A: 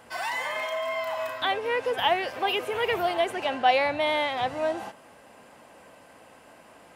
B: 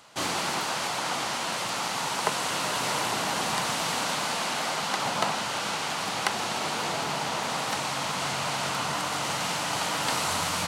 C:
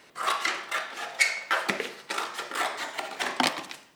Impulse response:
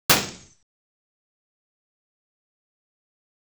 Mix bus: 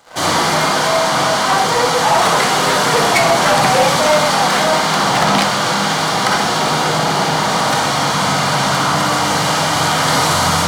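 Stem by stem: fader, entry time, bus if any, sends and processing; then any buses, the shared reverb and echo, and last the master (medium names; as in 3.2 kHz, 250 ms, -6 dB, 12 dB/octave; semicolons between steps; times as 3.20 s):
+2.5 dB, 0.00 s, send -19.5 dB, low-pass 1.3 kHz; square tremolo 3.5 Hz, depth 60%, duty 40%; high-pass 570 Hz 12 dB/octave
+3.0 dB, 0.00 s, send -22.5 dB, band-stop 2.6 kHz, Q 6
+1.0 dB, 1.95 s, no send, none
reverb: on, RT60 0.45 s, pre-delay 47 ms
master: waveshaping leveller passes 2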